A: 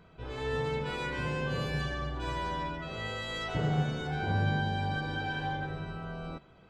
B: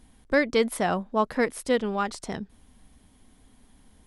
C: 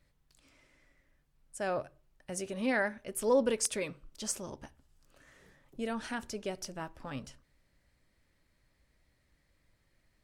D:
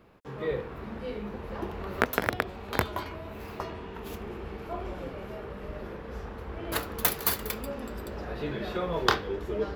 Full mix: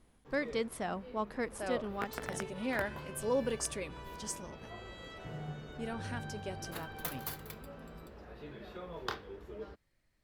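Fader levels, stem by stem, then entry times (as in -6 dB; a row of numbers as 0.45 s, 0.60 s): -14.0 dB, -12.0 dB, -5.0 dB, -14.5 dB; 1.70 s, 0.00 s, 0.00 s, 0.00 s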